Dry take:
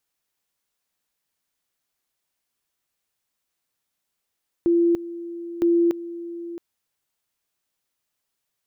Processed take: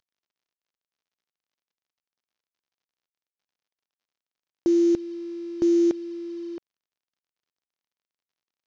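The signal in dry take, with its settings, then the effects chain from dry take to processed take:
two-level tone 341 Hz -15 dBFS, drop 15.5 dB, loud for 0.29 s, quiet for 0.67 s, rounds 2
CVSD coder 32 kbps; dynamic bell 1.1 kHz, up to -5 dB, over -43 dBFS, Q 1.5

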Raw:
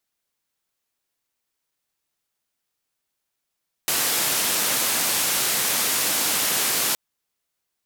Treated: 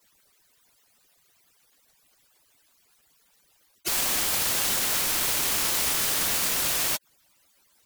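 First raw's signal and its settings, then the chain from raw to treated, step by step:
noise band 150–15000 Hz, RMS -22.5 dBFS 3.07 s
harmonic-percussive separation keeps percussive; peak limiter -20 dBFS; sine folder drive 16 dB, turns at -20 dBFS

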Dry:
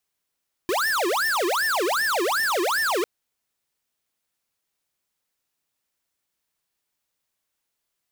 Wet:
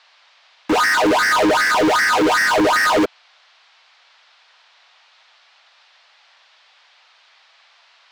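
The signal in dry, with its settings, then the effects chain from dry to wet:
siren wail 339–1800 Hz 2.6 per s square -23 dBFS 2.35 s
vocoder on a held chord minor triad, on G#3; waveshaping leveller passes 5; band noise 660–4500 Hz -54 dBFS

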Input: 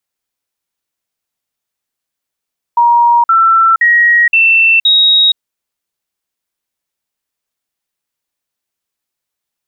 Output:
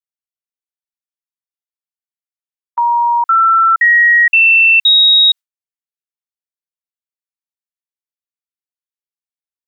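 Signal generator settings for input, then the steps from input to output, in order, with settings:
stepped sine 947 Hz up, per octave 2, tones 5, 0.47 s, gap 0.05 s -5 dBFS
gate with hold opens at -5 dBFS; high-pass 1.1 kHz 12 dB/octave

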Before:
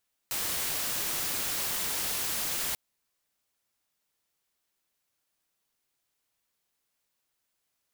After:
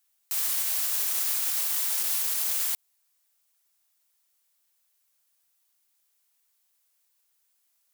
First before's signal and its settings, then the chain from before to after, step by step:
noise white, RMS -31.5 dBFS 2.44 s
high-pass 590 Hz 12 dB/octave; treble shelf 5.9 kHz +10.5 dB; peak limiter -17.5 dBFS

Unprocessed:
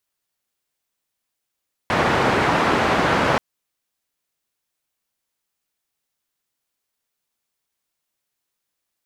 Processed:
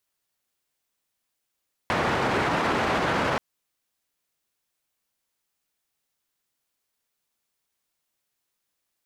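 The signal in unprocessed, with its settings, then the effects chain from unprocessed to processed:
noise band 81–1300 Hz, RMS -18.5 dBFS 1.48 s
peak limiter -16 dBFS

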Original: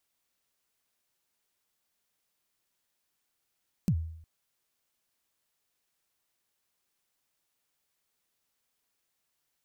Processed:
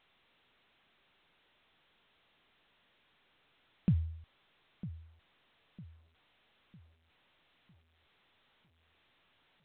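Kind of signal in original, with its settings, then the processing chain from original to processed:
kick drum length 0.36 s, from 210 Hz, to 81 Hz, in 70 ms, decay 0.70 s, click on, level -20 dB
treble shelf 2.7 kHz +4.5 dB; filtered feedback delay 953 ms, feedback 40%, low-pass 1.3 kHz, level -14 dB; A-law 64 kbps 8 kHz

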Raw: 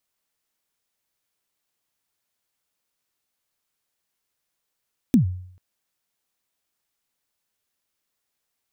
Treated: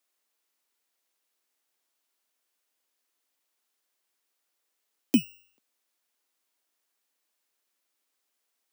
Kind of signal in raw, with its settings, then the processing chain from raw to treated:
kick drum length 0.44 s, from 280 Hz, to 91 Hz, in 113 ms, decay 0.63 s, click on, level -9.5 dB
bit-reversed sample order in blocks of 16 samples; steep high-pass 240 Hz 36 dB/octave

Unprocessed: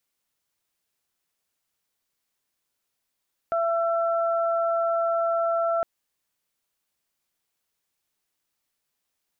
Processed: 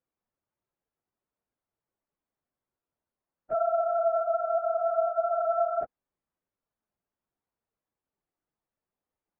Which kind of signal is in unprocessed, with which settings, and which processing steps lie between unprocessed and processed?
steady additive tone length 2.31 s, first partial 671 Hz, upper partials -5.5 dB, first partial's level -22 dB
phase randomisation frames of 50 ms; Bessel low-pass 820 Hz, order 2

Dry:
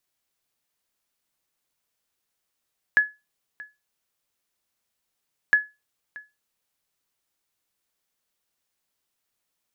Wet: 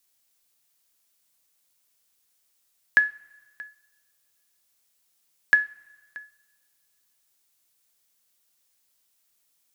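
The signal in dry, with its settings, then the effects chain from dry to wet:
sonar ping 1.7 kHz, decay 0.23 s, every 2.56 s, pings 2, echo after 0.63 s, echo -22 dB -9.5 dBFS
treble shelf 3.5 kHz +11 dB; two-slope reverb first 0.36 s, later 1.8 s, from -19 dB, DRR 12 dB

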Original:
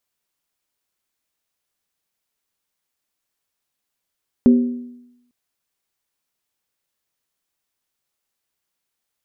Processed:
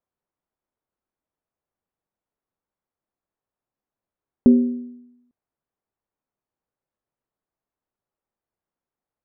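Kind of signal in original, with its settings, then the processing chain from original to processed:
skin hit length 0.85 s, lowest mode 244 Hz, decay 0.88 s, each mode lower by 11 dB, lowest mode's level -6 dB
low-pass 1 kHz 12 dB/octave

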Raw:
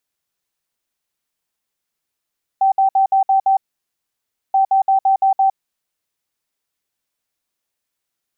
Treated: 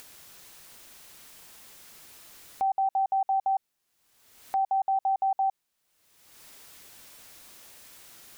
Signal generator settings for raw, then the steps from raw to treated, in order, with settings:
beep pattern sine 775 Hz, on 0.11 s, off 0.06 s, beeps 6, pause 0.97 s, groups 2, -10.5 dBFS
upward compressor, threshold -27 dBFS; peak limiter -21.5 dBFS

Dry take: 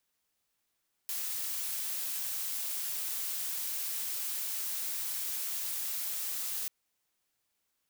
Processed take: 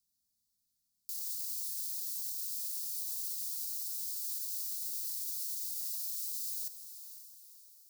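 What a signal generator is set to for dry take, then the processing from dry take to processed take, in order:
noise blue, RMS -35.5 dBFS 5.59 s
elliptic band-stop 230–4400 Hz, stop band 40 dB; peak limiter -28.5 dBFS; on a send: echo that smears into a reverb 520 ms, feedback 44%, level -11 dB

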